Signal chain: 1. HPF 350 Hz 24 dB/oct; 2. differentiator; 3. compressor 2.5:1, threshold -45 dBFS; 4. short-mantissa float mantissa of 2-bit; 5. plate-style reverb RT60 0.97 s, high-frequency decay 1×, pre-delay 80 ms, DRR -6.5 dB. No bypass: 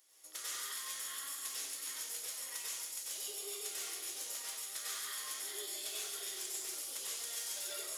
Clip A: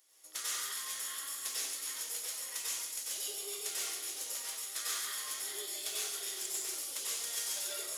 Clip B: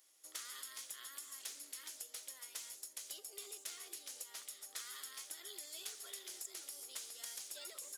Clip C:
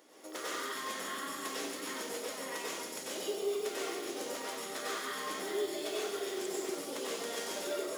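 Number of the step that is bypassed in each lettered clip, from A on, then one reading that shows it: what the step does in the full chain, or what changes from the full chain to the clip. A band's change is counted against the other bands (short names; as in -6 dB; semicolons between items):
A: 3, momentary loudness spread change +1 LU; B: 5, crest factor change +2.5 dB; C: 2, 8 kHz band -16.0 dB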